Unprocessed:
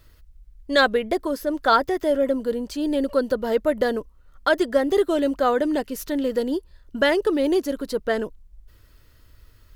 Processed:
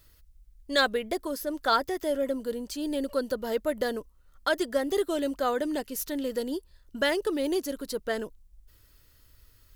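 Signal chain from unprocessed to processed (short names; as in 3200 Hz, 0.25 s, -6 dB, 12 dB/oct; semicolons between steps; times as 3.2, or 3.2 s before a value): high shelf 4100 Hz +10.5 dB; gain -7.5 dB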